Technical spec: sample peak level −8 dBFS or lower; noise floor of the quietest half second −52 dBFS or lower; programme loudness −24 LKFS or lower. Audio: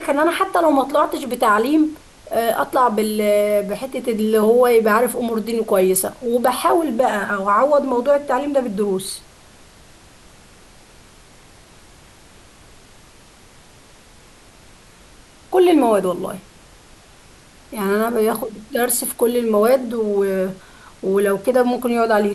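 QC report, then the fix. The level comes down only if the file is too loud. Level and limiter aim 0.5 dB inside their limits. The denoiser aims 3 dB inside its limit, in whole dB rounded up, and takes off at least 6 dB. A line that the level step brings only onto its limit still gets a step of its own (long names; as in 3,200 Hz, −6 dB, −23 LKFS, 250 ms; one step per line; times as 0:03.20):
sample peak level −5.5 dBFS: out of spec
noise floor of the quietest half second −47 dBFS: out of spec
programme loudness −18.0 LKFS: out of spec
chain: level −6.5 dB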